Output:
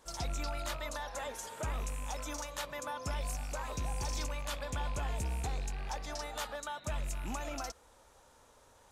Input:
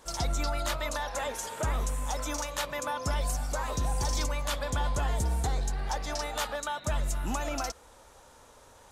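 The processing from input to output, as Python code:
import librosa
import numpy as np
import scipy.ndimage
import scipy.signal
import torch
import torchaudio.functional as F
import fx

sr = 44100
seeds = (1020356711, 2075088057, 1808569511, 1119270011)

y = fx.rattle_buzz(x, sr, strikes_db=-33.0, level_db=-31.0)
y = F.gain(torch.from_numpy(y), -7.0).numpy()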